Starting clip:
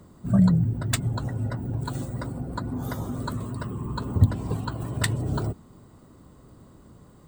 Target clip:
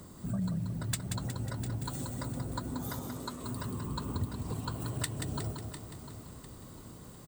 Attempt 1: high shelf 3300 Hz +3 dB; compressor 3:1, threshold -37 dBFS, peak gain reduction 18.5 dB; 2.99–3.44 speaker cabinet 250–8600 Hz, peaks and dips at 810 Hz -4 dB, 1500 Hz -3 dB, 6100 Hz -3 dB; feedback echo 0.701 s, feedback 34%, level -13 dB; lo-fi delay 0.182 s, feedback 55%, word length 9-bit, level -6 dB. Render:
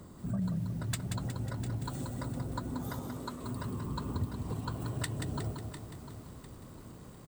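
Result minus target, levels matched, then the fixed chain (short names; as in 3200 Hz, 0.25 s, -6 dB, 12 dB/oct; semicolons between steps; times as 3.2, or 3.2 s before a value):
8000 Hz band -4.5 dB
high shelf 3300 Hz +10.5 dB; compressor 3:1, threshold -37 dBFS, peak gain reduction 18.5 dB; 2.99–3.44 speaker cabinet 250–8600 Hz, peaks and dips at 810 Hz -4 dB, 1500 Hz -3 dB, 6100 Hz -3 dB; feedback echo 0.701 s, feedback 34%, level -13 dB; lo-fi delay 0.182 s, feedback 55%, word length 9-bit, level -6 dB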